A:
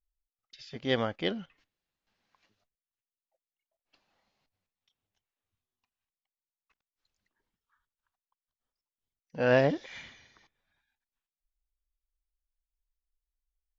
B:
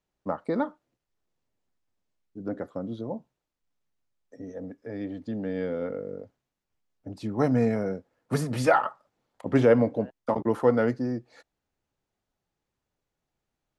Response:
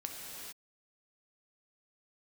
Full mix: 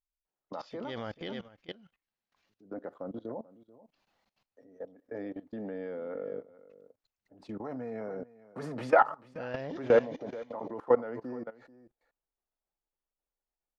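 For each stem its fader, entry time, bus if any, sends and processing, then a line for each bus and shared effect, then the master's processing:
+1.5 dB, 0.00 s, no send, echo send −11 dB, no processing
+2.5 dB, 0.25 s, no send, echo send −16 dB, resonant band-pass 820 Hz, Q 0.63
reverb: not used
echo: single-tap delay 437 ms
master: output level in coarse steps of 19 dB

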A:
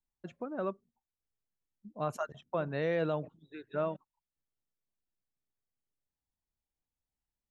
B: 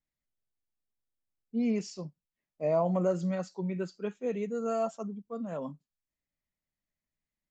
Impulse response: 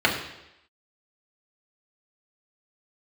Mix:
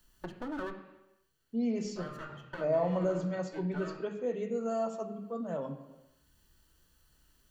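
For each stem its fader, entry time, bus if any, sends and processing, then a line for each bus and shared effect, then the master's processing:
+0.5 dB, 0.00 s, send −20 dB, lower of the sound and its delayed copy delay 0.67 ms; harmonic and percussive parts rebalanced harmonic +5 dB; multiband upward and downward compressor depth 70%; automatic ducking −9 dB, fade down 0.30 s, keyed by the second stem
+3.0 dB, 0.00 s, send −19 dB, no processing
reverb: on, RT60 0.85 s, pre-delay 3 ms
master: downward compressor 1.5 to 1, threshold −43 dBFS, peak gain reduction 10 dB

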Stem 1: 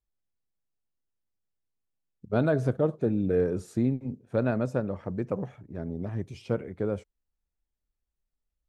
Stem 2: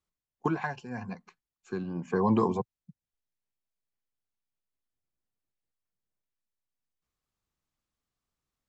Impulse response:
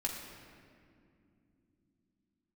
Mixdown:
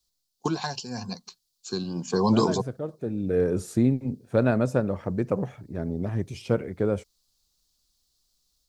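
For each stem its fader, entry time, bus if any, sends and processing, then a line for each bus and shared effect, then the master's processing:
+0.5 dB, 0.00 s, no send, high-shelf EQ 5,300 Hz +7.5 dB; automatic ducking −12 dB, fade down 0.25 s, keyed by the second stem
−0.5 dB, 0.00 s, no send, high shelf with overshoot 3,000 Hz +13.5 dB, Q 3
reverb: not used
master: automatic gain control gain up to 4 dB

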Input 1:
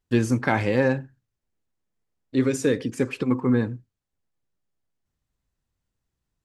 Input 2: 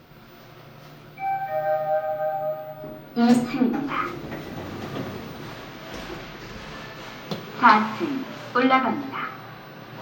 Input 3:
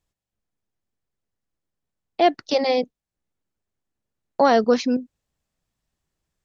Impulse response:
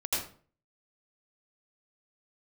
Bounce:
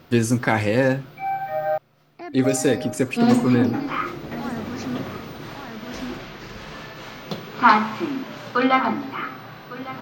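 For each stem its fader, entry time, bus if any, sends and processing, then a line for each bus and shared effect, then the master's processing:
+2.0 dB, 0.00 s, no send, no echo send, high-shelf EQ 5,400 Hz +9 dB
+0.5 dB, 0.00 s, muted 0:01.78–0:02.44, no send, echo send −16 dB, no processing
−2.5 dB, 0.00 s, no send, echo send −4.5 dB, brickwall limiter −17 dBFS, peak gain reduction 11.5 dB; phaser with its sweep stopped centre 1,400 Hz, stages 4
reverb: not used
echo: single-tap delay 1,154 ms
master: no processing

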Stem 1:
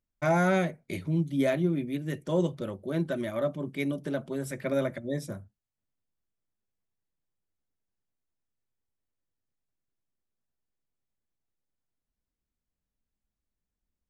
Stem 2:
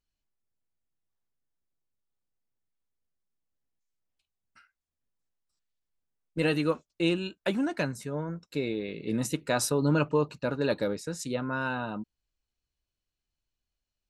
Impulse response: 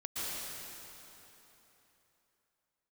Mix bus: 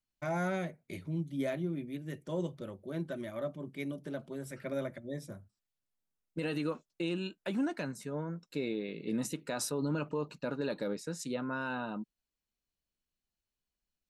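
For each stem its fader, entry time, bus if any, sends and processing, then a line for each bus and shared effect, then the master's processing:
−8.0 dB, 0.00 s, no send, no processing
−4.5 dB, 0.00 s, no send, low shelf with overshoot 130 Hz −7.5 dB, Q 1.5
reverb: not used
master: brickwall limiter −25 dBFS, peak gain reduction 7 dB

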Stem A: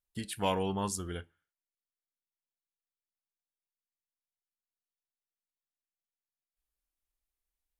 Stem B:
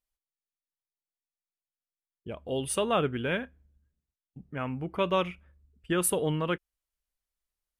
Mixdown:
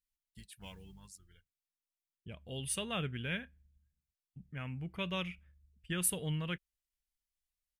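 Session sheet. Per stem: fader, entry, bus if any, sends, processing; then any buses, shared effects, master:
−13.5 dB, 0.20 s, no send, sub-octave generator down 2 octaves, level −5 dB; reverb reduction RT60 2 s; noise that follows the level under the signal 29 dB; automatic ducking −14 dB, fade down 1.50 s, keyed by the second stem
−3.5 dB, 0.00 s, no send, no processing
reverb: not used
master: flat-topped bell 590 Hz −11.5 dB 2.7 octaves

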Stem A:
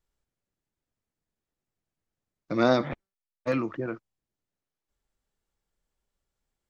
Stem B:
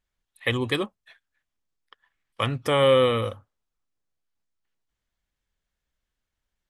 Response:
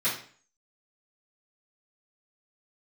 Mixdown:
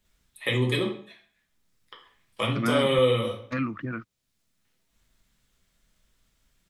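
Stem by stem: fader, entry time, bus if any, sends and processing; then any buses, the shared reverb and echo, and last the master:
+1.0 dB, 0.05 s, no send, treble cut that deepens with the level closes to 2,300 Hz, closed at −27 dBFS; flat-topped bell 560 Hz −13.5 dB
−4.5 dB, 0.00 s, send −5 dB, parametric band 1,500 Hz −8.5 dB 0.96 octaves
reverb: on, RT60 0.45 s, pre-delay 3 ms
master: multiband upward and downward compressor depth 40%

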